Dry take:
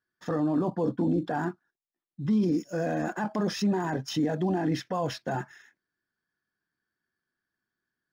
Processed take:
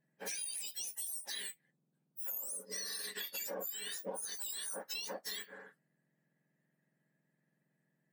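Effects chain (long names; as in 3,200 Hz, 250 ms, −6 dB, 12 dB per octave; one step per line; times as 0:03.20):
frequency axis turned over on the octave scale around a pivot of 1,700 Hz
downward compressor 10 to 1, threshold −42 dBFS, peak gain reduction 16 dB
level +3.5 dB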